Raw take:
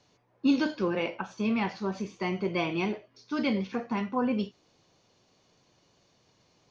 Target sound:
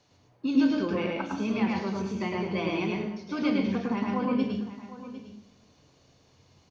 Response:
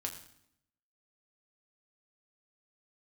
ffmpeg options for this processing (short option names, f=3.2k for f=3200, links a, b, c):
-filter_complex "[0:a]acompressor=threshold=-29dB:ratio=2.5,aecho=1:1:754:0.178,asplit=2[a][b];[1:a]atrim=start_sample=2205,lowshelf=f=250:g=9.5,adelay=107[c];[b][c]afir=irnorm=-1:irlink=0,volume=-0.5dB[d];[a][d]amix=inputs=2:normalize=0"